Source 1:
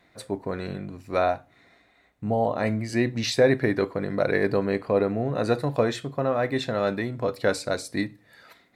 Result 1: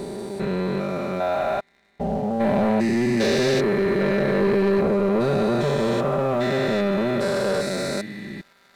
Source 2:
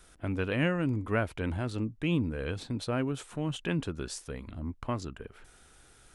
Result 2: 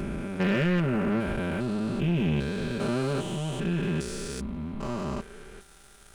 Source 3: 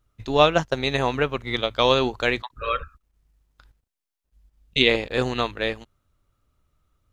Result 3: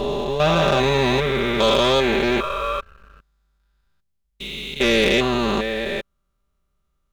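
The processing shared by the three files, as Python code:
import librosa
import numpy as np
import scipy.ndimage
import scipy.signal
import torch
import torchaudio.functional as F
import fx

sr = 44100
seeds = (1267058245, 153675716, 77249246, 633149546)

y = fx.spec_steps(x, sr, hold_ms=400)
y = y + 0.81 * np.pad(y, (int(5.1 * sr / 1000.0), 0))[:len(y)]
y = fx.leveller(y, sr, passes=2)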